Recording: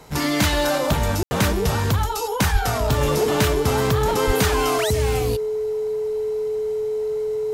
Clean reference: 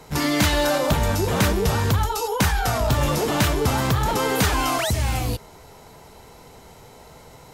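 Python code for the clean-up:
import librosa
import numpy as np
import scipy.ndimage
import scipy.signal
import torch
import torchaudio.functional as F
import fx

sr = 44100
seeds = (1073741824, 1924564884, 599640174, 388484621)

y = fx.notch(x, sr, hz=430.0, q=30.0)
y = fx.highpass(y, sr, hz=140.0, slope=24, at=(2.52, 2.64), fade=0.02)
y = fx.highpass(y, sr, hz=140.0, slope=24, at=(4.26, 4.38), fade=0.02)
y = fx.fix_ambience(y, sr, seeds[0], print_start_s=0.0, print_end_s=0.5, start_s=1.23, end_s=1.31)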